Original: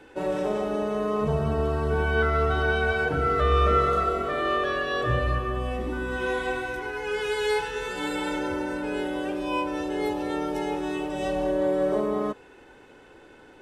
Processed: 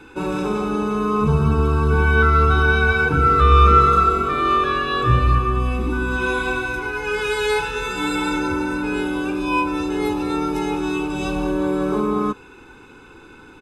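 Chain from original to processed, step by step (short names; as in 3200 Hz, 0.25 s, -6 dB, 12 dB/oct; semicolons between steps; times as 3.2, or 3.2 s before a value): comb 0.8 ms, depth 84%; gain +5 dB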